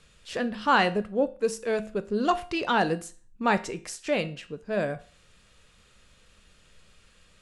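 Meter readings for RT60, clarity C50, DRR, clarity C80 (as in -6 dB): 0.40 s, 17.5 dB, 11.0 dB, 21.5 dB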